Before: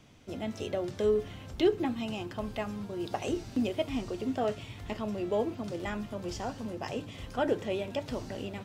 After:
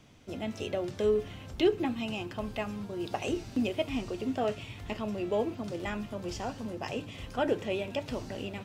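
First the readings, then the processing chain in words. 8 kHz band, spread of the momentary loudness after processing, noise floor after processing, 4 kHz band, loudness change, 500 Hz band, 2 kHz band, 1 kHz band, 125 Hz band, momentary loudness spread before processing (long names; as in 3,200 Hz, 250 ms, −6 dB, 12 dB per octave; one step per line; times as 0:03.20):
0.0 dB, 9 LU, −46 dBFS, +1.5 dB, 0.0 dB, 0.0 dB, +2.0 dB, 0.0 dB, 0.0 dB, 10 LU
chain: dynamic equaliser 2,600 Hz, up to +5 dB, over −57 dBFS, Q 3.9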